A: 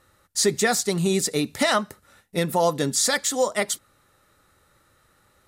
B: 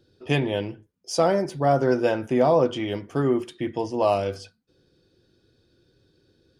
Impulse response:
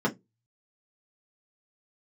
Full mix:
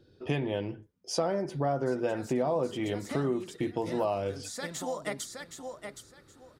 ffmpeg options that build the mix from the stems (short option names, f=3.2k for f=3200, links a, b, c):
-filter_complex "[0:a]acompressor=threshold=-23dB:ratio=6,adelay=1500,volume=-4.5dB,asplit=2[a][b];[b]volume=-9dB[c];[1:a]volume=1.5dB,asplit=2[d][e];[e]apad=whole_len=307517[f];[a][f]sidechaincompress=threshold=-23dB:ratio=8:attack=27:release=1270[g];[c]aecho=0:1:769|1538|2307:1|0.19|0.0361[h];[g][d][h]amix=inputs=3:normalize=0,highshelf=f=3.5k:g=-7,acompressor=threshold=-29dB:ratio=3"